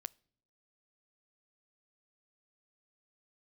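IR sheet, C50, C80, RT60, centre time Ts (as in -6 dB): 27.0 dB, 31.0 dB, no single decay rate, 1 ms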